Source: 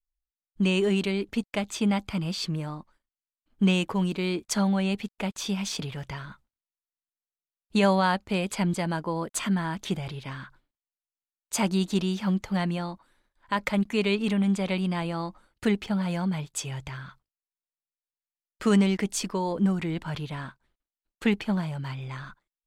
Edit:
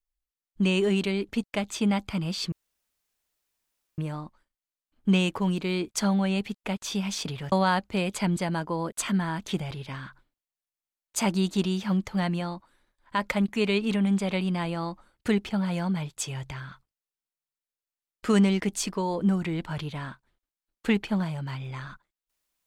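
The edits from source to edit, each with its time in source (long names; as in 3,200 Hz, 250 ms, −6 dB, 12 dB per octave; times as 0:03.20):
0:02.52: splice in room tone 1.46 s
0:06.06–0:07.89: remove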